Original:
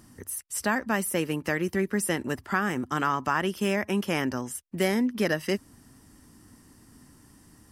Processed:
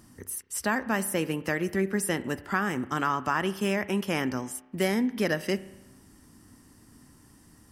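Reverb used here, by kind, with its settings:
spring reverb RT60 1 s, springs 31 ms, chirp 60 ms, DRR 15 dB
level −1 dB

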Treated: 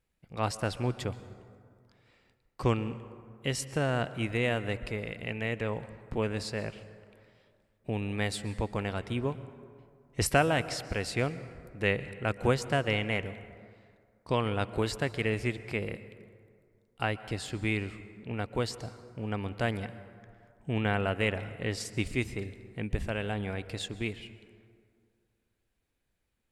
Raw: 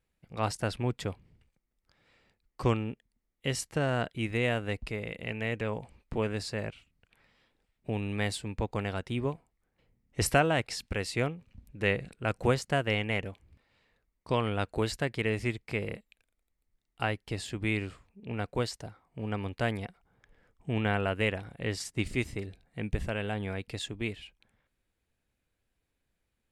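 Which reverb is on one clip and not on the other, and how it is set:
dense smooth reverb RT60 2.2 s, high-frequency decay 0.45×, pre-delay 110 ms, DRR 14.5 dB

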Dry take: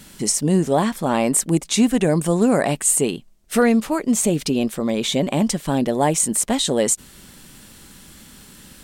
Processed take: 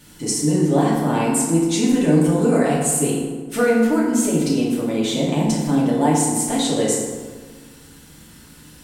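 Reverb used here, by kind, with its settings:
feedback delay network reverb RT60 1.5 s, low-frequency decay 1.2×, high-frequency decay 0.55×, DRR −6 dB
level −7.5 dB

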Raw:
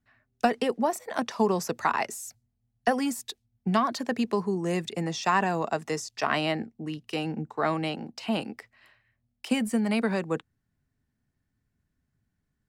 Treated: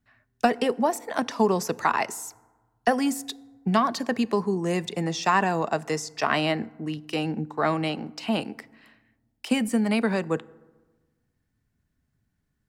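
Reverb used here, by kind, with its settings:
feedback delay network reverb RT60 1.3 s, low-frequency decay 1.2×, high-frequency decay 0.45×, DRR 20 dB
level +2.5 dB

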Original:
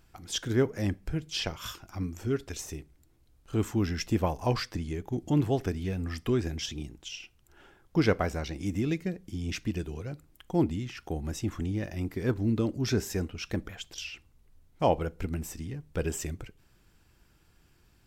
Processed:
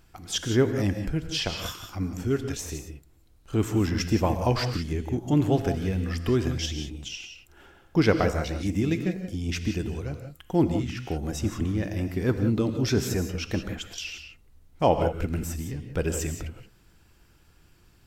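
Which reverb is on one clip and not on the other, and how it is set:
reverb whose tail is shaped and stops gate 200 ms rising, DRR 7 dB
level +3.5 dB

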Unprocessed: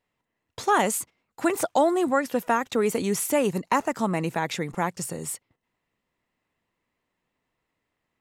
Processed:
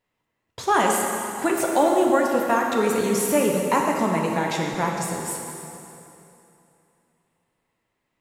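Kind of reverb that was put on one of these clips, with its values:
dense smooth reverb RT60 2.9 s, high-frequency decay 0.85×, DRR −0.5 dB

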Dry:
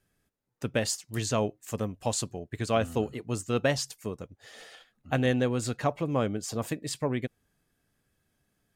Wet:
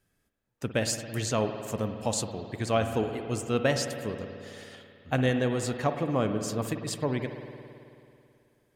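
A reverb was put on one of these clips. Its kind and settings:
spring reverb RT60 2.6 s, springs 54 ms, chirp 55 ms, DRR 6.5 dB

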